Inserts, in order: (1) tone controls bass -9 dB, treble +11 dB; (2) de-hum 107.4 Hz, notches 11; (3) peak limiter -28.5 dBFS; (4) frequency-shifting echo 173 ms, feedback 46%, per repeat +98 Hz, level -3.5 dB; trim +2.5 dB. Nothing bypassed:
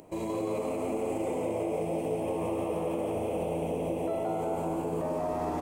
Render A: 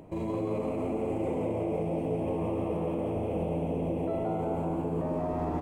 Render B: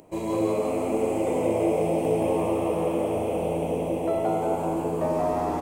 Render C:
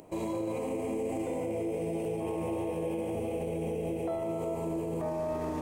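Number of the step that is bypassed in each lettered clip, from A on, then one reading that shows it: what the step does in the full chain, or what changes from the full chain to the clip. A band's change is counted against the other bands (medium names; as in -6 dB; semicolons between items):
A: 1, 125 Hz band +6.5 dB; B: 3, mean gain reduction 5.5 dB; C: 4, echo-to-direct -2.5 dB to none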